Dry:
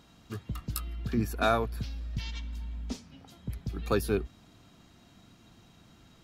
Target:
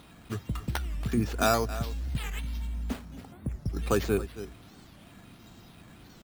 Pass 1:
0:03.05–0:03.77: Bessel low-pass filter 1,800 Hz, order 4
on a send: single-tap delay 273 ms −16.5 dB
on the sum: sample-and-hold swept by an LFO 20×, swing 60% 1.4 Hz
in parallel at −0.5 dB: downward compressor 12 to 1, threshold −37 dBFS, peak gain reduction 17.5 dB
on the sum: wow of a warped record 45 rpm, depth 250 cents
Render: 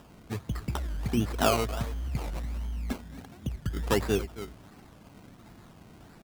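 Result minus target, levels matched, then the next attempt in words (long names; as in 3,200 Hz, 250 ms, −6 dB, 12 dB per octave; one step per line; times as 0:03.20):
sample-and-hold swept by an LFO: distortion +8 dB
0:03.05–0:03.77: Bessel low-pass filter 1,800 Hz, order 4
on a send: single-tap delay 273 ms −16.5 dB
on the sum: sample-and-hold swept by an LFO 6×, swing 60% 1.4 Hz
in parallel at −0.5 dB: downward compressor 12 to 1, threshold −37 dBFS, peak gain reduction 17 dB
on the sum: wow of a warped record 45 rpm, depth 250 cents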